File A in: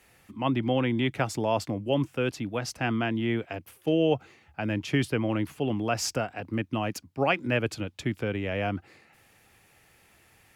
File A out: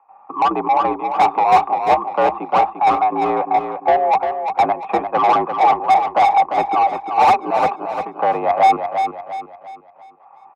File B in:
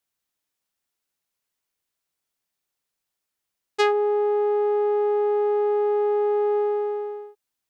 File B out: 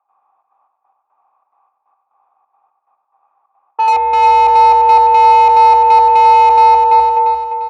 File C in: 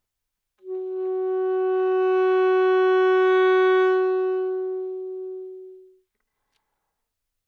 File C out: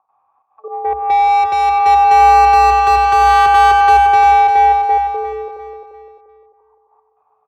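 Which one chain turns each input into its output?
noise gate −48 dBFS, range −55 dB
parametric band 930 Hz +4 dB 1.2 octaves
upward compression, threshold −35 dBFS
gate pattern ".xxxx.xx..x." 178 BPM −12 dB
formant resonators in series a
mid-hump overdrive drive 30 dB, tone 1,300 Hz, clips at −20.5 dBFS
frequency shifter +60 Hz
on a send: repeating echo 347 ms, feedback 39%, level −7 dB
on the sum: normalise the peak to −1.5 dBFS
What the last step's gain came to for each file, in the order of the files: +16.5, +17.5, +17.5 decibels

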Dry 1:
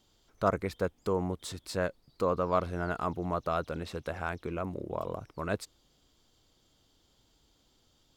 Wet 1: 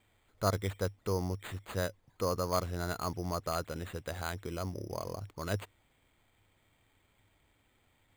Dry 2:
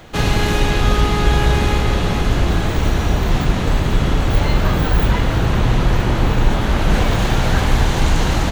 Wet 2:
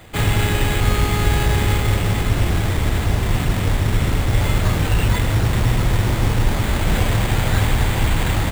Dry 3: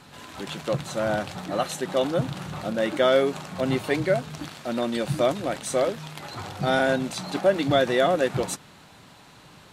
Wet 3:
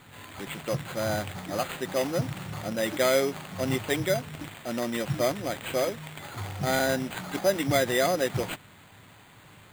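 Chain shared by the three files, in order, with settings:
thirty-one-band graphic EQ 100 Hz +11 dB, 2,000 Hz +6 dB, 3,150 Hz +4 dB
bad sample-rate conversion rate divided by 8×, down none, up hold
level −4 dB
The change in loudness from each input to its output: −2.5, −1.5, −3.5 LU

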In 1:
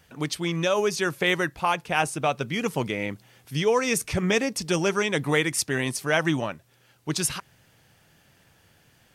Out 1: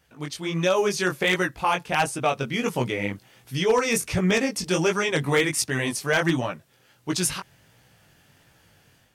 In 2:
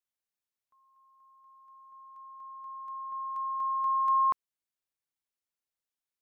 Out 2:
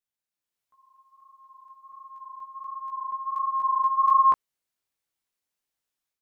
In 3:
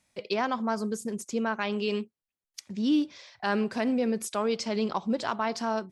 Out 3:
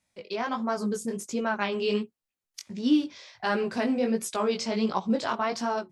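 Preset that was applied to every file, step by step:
chorus effect 1.4 Hz, delay 16 ms, depth 6.1 ms
automatic gain control gain up to 7 dB
wave folding −9.5 dBFS
normalise the peak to −12 dBFS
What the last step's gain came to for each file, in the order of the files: −2.5, +2.5, −2.5 decibels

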